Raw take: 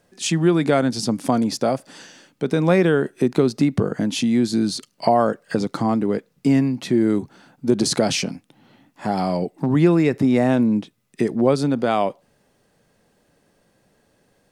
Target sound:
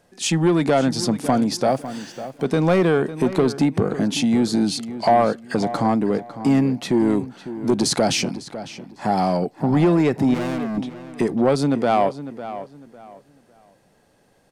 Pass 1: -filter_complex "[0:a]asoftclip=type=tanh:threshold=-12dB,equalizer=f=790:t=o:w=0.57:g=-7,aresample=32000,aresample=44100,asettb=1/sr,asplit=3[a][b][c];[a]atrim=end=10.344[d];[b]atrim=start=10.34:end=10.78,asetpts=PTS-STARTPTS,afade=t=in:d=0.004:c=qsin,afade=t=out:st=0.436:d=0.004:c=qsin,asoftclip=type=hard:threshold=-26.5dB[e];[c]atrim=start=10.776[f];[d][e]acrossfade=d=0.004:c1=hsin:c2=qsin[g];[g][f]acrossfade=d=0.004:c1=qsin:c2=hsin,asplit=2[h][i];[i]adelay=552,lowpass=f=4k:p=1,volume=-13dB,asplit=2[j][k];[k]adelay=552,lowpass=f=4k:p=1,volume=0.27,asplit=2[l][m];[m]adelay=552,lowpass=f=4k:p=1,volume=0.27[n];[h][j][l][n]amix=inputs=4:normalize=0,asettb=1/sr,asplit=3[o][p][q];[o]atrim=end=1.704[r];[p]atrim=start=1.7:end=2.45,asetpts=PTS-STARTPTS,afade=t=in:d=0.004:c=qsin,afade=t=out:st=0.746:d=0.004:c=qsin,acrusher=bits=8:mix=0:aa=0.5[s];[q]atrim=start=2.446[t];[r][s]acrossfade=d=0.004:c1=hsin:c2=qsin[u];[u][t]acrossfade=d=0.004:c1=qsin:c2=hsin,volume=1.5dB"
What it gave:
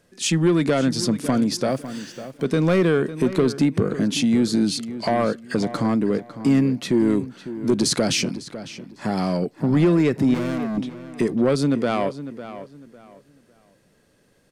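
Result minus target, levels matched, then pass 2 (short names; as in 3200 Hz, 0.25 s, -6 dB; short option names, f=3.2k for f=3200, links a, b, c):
1000 Hz band -6.5 dB
-filter_complex "[0:a]asoftclip=type=tanh:threshold=-12dB,equalizer=f=790:t=o:w=0.57:g=4,aresample=32000,aresample=44100,asettb=1/sr,asplit=3[a][b][c];[a]atrim=end=10.344[d];[b]atrim=start=10.34:end=10.78,asetpts=PTS-STARTPTS,afade=t=in:d=0.004:c=qsin,afade=t=out:st=0.436:d=0.004:c=qsin,asoftclip=type=hard:threshold=-26.5dB[e];[c]atrim=start=10.776[f];[d][e]acrossfade=d=0.004:c1=hsin:c2=qsin[g];[g][f]acrossfade=d=0.004:c1=qsin:c2=hsin,asplit=2[h][i];[i]adelay=552,lowpass=f=4k:p=1,volume=-13dB,asplit=2[j][k];[k]adelay=552,lowpass=f=4k:p=1,volume=0.27,asplit=2[l][m];[m]adelay=552,lowpass=f=4k:p=1,volume=0.27[n];[h][j][l][n]amix=inputs=4:normalize=0,asettb=1/sr,asplit=3[o][p][q];[o]atrim=end=1.704[r];[p]atrim=start=1.7:end=2.45,asetpts=PTS-STARTPTS,afade=t=in:d=0.004:c=qsin,afade=t=out:st=0.746:d=0.004:c=qsin,acrusher=bits=8:mix=0:aa=0.5[s];[q]atrim=start=2.446[t];[r][s]acrossfade=d=0.004:c1=hsin:c2=qsin[u];[u][t]acrossfade=d=0.004:c1=qsin:c2=hsin,volume=1.5dB"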